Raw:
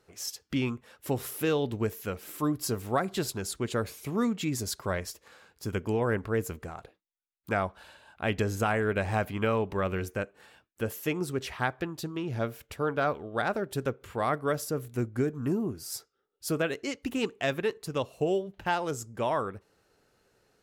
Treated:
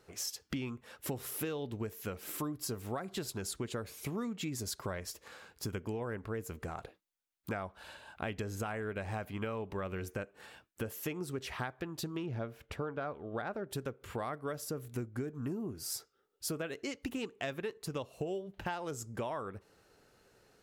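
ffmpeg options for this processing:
-filter_complex "[0:a]asettb=1/sr,asplit=3[a][b][c];[a]atrim=end=12.264[d];[b]atrim=start=12.26:end=13.7,asetpts=PTS-STARTPTS,afade=t=in:d=0.004:c=qsin,afade=t=out:st=1.436:d=0.004:c=qsin,lowpass=f=2.4k:p=1[e];[c]atrim=start=13.696[f];[d][e]acrossfade=d=0.004:c1=hsin:c2=qsin[g];[g][f]acrossfade=d=0.004:c1=qsin:c2=hsin,acompressor=threshold=-38dB:ratio=6,volume=2.5dB"

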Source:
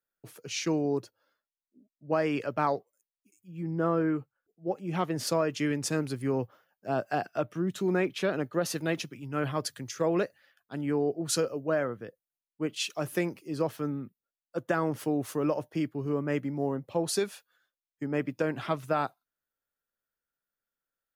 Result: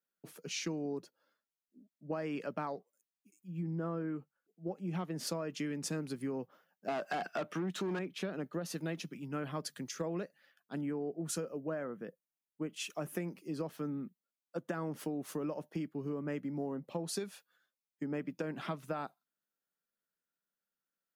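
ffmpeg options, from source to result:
-filter_complex "[0:a]asettb=1/sr,asplit=3[a][b][c];[a]atrim=end=6.884[d];[b]atrim=start=6.88:end=7.99,asetpts=PTS-STARTPTS,afade=t=in:d=0.004:c=qsin,afade=t=out:st=1.106:d=0.004:c=qsin,asplit=2[e][f];[f]highpass=f=720:p=1,volume=22dB,asoftclip=type=tanh:threshold=-16dB[g];[e][g]amix=inputs=2:normalize=0,lowpass=f=4.3k:p=1,volume=-6dB[h];[c]atrim=start=7.986[i];[d][h]acrossfade=d=0.004:c1=hsin:c2=qsin[j];[j][i]acrossfade=d=0.004:c1=qsin:c2=hsin,asettb=1/sr,asplit=3[k][l][m];[k]atrim=end=10.814[n];[l]atrim=start=10.81:end=13.28,asetpts=PTS-STARTPTS,afade=t=in:d=0.004:c=qsin,afade=t=out:st=2.466:d=0.004:c=qsin,equalizer=f=4.2k:w=1.8:g=-8[o];[m]atrim=start=13.276[p];[n][o]acrossfade=d=0.004:c1=hsin:c2=qsin[q];[q][p]acrossfade=d=0.004:c1=qsin:c2=hsin,lowshelf=f=130:t=q:w=3:g=-10,acompressor=threshold=-31dB:ratio=6,volume=-3.5dB"

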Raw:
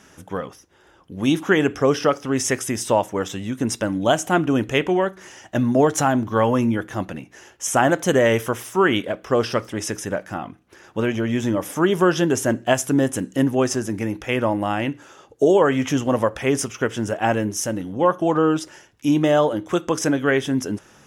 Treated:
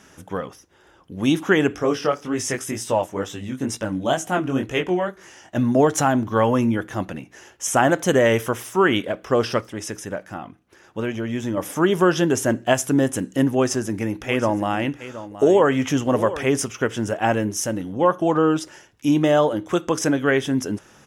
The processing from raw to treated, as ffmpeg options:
-filter_complex "[0:a]asplit=3[a][b][c];[a]afade=t=out:st=1.75:d=0.02[d];[b]flanger=delay=17.5:depth=5.5:speed=2.1,afade=t=in:st=1.75:d=0.02,afade=t=out:st=5.56:d=0.02[e];[c]afade=t=in:st=5.56:d=0.02[f];[d][e][f]amix=inputs=3:normalize=0,asplit=3[g][h][i];[g]afade=t=out:st=14.21:d=0.02[j];[h]aecho=1:1:721:0.2,afade=t=in:st=14.21:d=0.02,afade=t=out:st=16.46:d=0.02[k];[i]afade=t=in:st=16.46:d=0.02[l];[j][k][l]amix=inputs=3:normalize=0,asplit=3[m][n][o];[m]atrim=end=9.612[p];[n]atrim=start=9.608:end=11.572,asetpts=PTS-STARTPTS,volume=-4dB[q];[o]atrim=start=11.568[r];[p][q]acrossfade=d=0.004:c1=hsin:c2=hsin[s];[s][r]acrossfade=d=0.004:c1=hsin:c2=hsin"

